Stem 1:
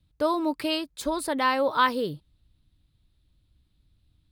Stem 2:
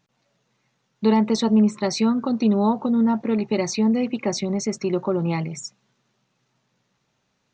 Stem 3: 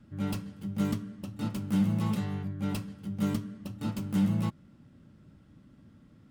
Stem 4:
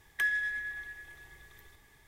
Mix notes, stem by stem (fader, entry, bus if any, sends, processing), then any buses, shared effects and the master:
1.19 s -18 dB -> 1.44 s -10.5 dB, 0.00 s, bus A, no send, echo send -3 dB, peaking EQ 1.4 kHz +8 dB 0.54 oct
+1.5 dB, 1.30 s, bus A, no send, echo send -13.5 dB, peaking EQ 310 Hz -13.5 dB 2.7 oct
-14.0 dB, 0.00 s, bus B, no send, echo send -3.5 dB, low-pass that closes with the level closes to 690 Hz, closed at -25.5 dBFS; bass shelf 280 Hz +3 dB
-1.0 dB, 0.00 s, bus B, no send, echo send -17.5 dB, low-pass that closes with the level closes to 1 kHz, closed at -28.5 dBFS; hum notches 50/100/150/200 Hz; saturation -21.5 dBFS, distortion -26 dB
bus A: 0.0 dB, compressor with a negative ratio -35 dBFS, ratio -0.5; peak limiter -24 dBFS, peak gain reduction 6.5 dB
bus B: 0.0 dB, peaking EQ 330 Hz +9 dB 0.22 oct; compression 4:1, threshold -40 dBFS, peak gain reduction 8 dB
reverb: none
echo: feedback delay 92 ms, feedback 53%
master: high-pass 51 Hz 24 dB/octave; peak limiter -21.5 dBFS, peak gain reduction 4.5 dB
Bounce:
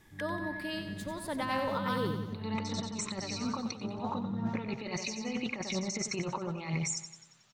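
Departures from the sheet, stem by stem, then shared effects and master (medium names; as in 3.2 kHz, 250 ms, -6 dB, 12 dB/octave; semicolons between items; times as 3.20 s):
stem 1: missing peaking EQ 1.4 kHz +8 dB 0.54 oct; master: missing high-pass 51 Hz 24 dB/octave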